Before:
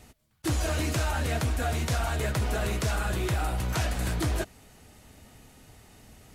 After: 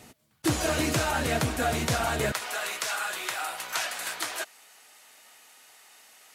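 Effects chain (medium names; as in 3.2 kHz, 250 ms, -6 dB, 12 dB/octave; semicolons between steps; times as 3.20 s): high-pass 140 Hz 12 dB/octave, from 2.32 s 1 kHz; trim +4.5 dB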